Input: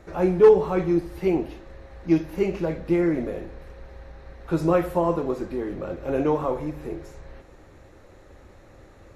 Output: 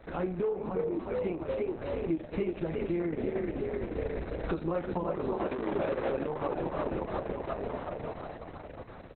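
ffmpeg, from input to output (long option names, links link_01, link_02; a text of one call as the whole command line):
ffmpeg -i in.wav -filter_complex "[0:a]asplit=3[link_01][link_02][link_03];[link_01]afade=type=out:start_time=3.49:duration=0.02[link_04];[link_02]bandreject=frequency=50:width_type=h:width=6,bandreject=frequency=100:width_type=h:width=6,bandreject=frequency=150:width_type=h:width=6,bandreject=frequency=200:width_type=h:width=6,bandreject=frequency=250:width_type=h:width=6,afade=type=in:start_time=3.49:duration=0.02,afade=type=out:start_time=4.79:duration=0.02[link_05];[link_03]afade=type=in:start_time=4.79:duration=0.02[link_06];[link_04][link_05][link_06]amix=inputs=3:normalize=0,asplit=3[link_07][link_08][link_09];[link_07]afade=type=out:start_time=5.37:duration=0.02[link_10];[link_08]asplit=2[link_11][link_12];[link_12]highpass=frequency=720:poles=1,volume=29dB,asoftclip=type=tanh:threshold=-16.5dB[link_13];[link_11][link_13]amix=inputs=2:normalize=0,lowpass=frequency=1200:poles=1,volume=-6dB,afade=type=in:start_time=5.37:duration=0.02,afade=type=out:start_time=6.11:duration=0.02[link_14];[link_09]afade=type=in:start_time=6.11:duration=0.02[link_15];[link_10][link_14][link_15]amix=inputs=3:normalize=0,dynaudnorm=framelen=200:gausssize=21:maxgain=13dB,asplit=8[link_16][link_17][link_18][link_19][link_20][link_21][link_22][link_23];[link_17]adelay=353,afreqshift=33,volume=-5.5dB[link_24];[link_18]adelay=706,afreqshift=66,volume=-10.5dB[link_25];[link_19]adelay=1059,afreqshift=99,volume=-15.6dB[link_26];[link_20]adelay=1412,afreqshift=132,volume=-20.6dB[link_27];[link_21]adelay=1765,afreqshift=165,volume=-25.6dB[link_28];[link_22]adelay=2118,afreqshift=198,volume=-30.7dB[link_29];[link_23]adelay=2471,afreqshift=231,volume=-35.7dB[link_30];[link_16][link_24][link_25][link_26][link_27][link_28][link_29][link_30]amix=inputs=8:normalize=0,acompressor=threshold=-29dB:ratio=6,asettb=1/sr,asplit=3[link_31][link_32][link_33];[link_31]atrim=end=0.434[link_34];[link_32]atrim=start=0.43:end=0.93,asetpts=PTS-STARTPTS,afade=type=in:duration=0.004:curve=qsin,afade=type=out:start_time=0.496:duration=0.004:curve=qsin,lowpass=frequency=1700:poles=1[link_35];[link_33]atrim=start=0.926[link_36];[link_34][link_35]acrossfade=duration=0.004:curve1=hsin:curve2=qsin[link_37];[link_37][link_36]acrossfade=duration=0.004:curve1=qsin:curve2=hsin" -ar 48000 -c:a libopus -b:a 6k out.opus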